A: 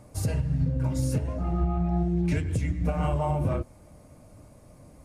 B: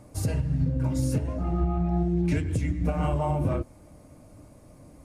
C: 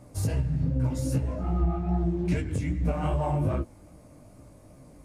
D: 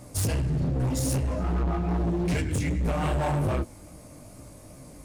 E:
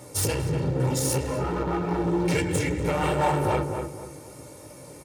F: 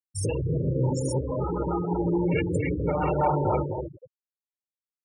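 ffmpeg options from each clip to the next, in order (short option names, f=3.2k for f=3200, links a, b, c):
-af "equalizer=f=300:t=o:w=0.43:g=5"
-filter_complex "[0:a]asplit=2[a][b];[b]volume=26.5dB,asoftclip=hard,volume=-26.5dB,volume=-9.5dB[c];[a][c]amix=inputs=2:normalize=0,flanger=delay=15:depth=6:speed=2.5"
-af "highshelf=f=2.4k:g=8.5,asoftclip=type=hard:threshold=-27dB,volume=4dB"
-filter_complex "[0:a]highpass=150,aecho=1:1:2.2:0.62,asplit=2[a][b];[b]adelay=242,lowpass=f=1.5k:p=1,volume=-5dB,asplit=2[c][d];[d]adelay=242,lowpass=f=1.5k:p=1,volume=0.34,asplit=2[e][f];[f]adelay=242,lowpass=f=1.5k:p=1,volume=0.34,asplit=2[g][h];[h]adelay=242,lowpass=f=1.5k:p=1,volume=0.34[i];[a][c][e][g][i]amix=inputs=5:normalize=0,volume=3.5dB"
-af "afftfilt=real='re*gte(hypot(re,im),0.0891)':imag='im*gte(hypot(re,im),0.0891)':win_size=1024:overlap=0.75,lowpass=8.4k"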